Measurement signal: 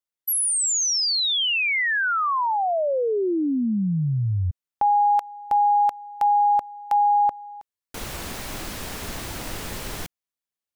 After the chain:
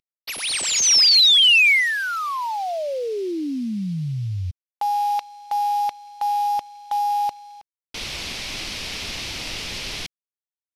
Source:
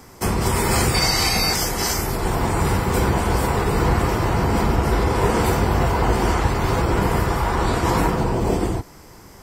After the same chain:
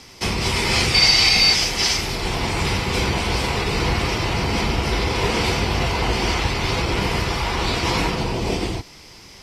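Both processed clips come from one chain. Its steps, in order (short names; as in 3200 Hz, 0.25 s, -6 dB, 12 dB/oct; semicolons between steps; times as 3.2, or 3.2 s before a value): CVSD 64 kbps; band shelf 3500 Hz +12 dB; gain -3 dB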